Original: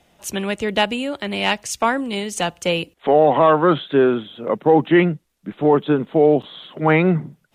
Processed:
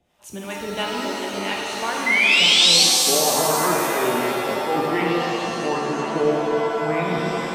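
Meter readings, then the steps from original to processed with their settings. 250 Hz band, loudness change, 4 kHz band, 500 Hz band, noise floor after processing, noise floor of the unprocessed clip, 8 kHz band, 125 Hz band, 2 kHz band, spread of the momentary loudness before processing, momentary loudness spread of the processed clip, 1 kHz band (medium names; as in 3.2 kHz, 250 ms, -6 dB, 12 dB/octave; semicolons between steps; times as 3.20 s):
-6.5 dB, 0.0 dB, +10.5 dB, -5.5 dB, -34 dBFS, -64 dBFS, +11.5 dB, -8.0 dB, +3.5 dB, 11 LU, 14 LU, -2.5 dB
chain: backward echo that repeats 133 ms, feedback 84%, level -10.5 dB; harmonic tremolo 2.9 Hz, depth 70%, crossover 590 Hz; painted sound rise, 2.06–2.84 s, 2–4.6 kHz -12 dBFS; pitch-shifted reverb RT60 2.3 s, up +7 st, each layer -2 dB, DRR -1 dB; trim -7.5 dB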